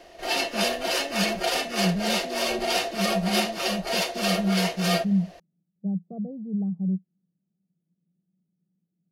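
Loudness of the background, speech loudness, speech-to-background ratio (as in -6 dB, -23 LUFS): -26.0 LUFS, -30.5 LUFS, -4.5 dB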